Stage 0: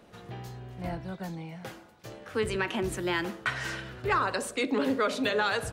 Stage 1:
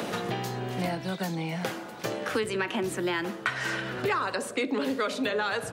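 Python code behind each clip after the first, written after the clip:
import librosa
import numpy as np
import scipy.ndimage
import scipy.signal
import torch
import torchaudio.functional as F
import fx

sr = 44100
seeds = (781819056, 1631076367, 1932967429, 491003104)

y = scipy.signal.sosfilt(scipy.signal.butter(2, 140.0, 'highpass', fs=sr, output='sos'), x)
y = fx.band_squash(y, sr, depth_pct=100)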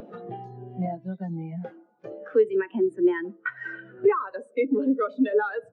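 y = fx.low_shelf(x, sr, hz=160.0, db=-4.0)
y = fx.spectral_expand(y, sr, expansion=2.5)
y = y * librosa.db_to_amplitude(2.0)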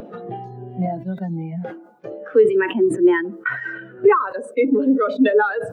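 y = fx.sustainer(x, sr, db_per_s=95.0)
y = y * librosa.db_to_amplitude(6.0)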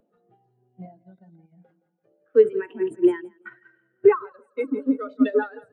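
y = fx.echo_feedback(x, sr, ms=169, feedback_pct=45, wet_db=-12.0)
y = fx.upward_expand(y, sr, threshold_db=-30.0, expansion=2.5)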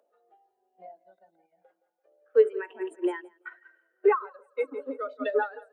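y = fx.ladder_highpass(x, sr, hz=470.0, resonance_pct=35)
y = y * librosa.db_to_amplitude(6.0)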